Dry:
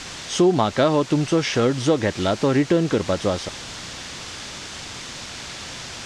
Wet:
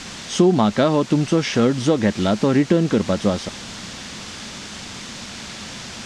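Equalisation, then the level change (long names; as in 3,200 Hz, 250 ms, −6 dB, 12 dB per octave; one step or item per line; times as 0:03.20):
parametric band 210 Hz +10.5 dB 0.46 octaves
0.0 dB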